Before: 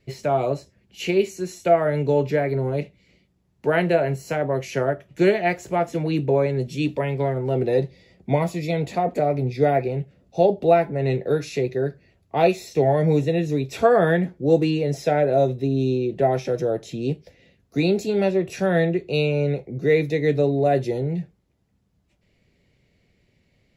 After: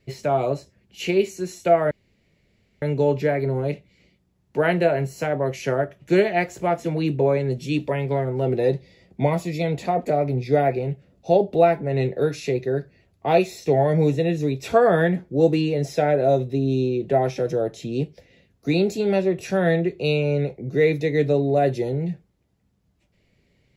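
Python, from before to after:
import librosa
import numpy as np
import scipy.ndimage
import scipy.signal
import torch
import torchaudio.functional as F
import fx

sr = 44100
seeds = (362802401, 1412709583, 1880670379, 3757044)

y = fx.edit(x, sr, fx.insert_room_tone(at_s=1.91, length_s=0.91), tone=tone)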